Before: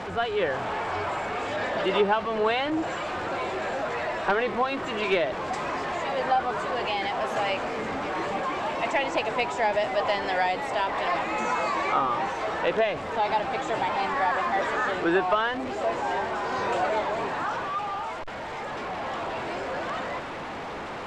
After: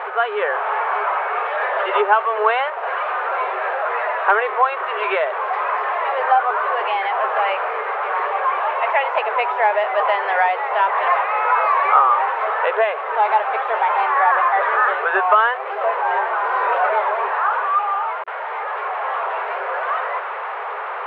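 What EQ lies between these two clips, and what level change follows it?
brick-wall FIR high-pass 380 Hz; LPF 2900 Hz 24 dB/oct; bell 1200 Hz +11 dB 1.5 oct; +1.5 dB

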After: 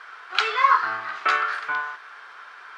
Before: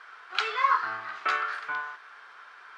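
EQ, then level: low shelf 120 Hz -4.5 dB; +6.0 dB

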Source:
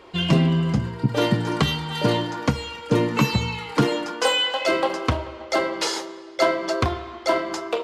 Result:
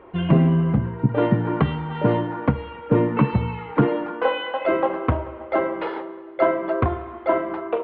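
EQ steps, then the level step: Gaussian blur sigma 4.3 samples; +2.0 dB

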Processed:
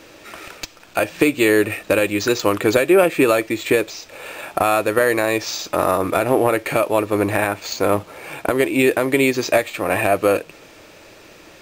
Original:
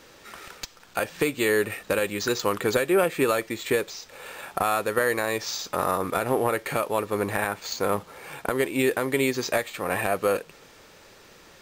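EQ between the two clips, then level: thirty-one-band EQ 100 Hz +5 dB, 315 Hz +9 dB, 630 Hz +7 dB, 2500 Hz +6 dB; +4.5 dB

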